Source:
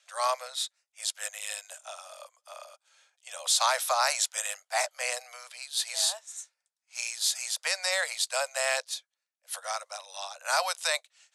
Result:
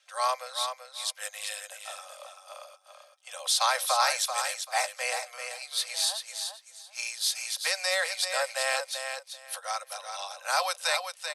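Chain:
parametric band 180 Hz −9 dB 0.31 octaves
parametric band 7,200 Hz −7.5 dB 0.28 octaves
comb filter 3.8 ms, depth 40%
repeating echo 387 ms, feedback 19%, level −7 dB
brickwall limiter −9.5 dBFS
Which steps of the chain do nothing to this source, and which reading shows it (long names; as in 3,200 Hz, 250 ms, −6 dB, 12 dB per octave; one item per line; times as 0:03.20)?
parametric band 180 Hz: nothing at its input below 430 Hz
brickwall limiter −9.5 dBFS: peak of its input −11.0 dBFS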